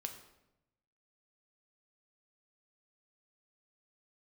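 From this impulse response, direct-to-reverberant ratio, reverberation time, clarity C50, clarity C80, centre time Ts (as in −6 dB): 5.0 dB, 0.90 s, 9.0 dB, 11.0 dB, 16 ms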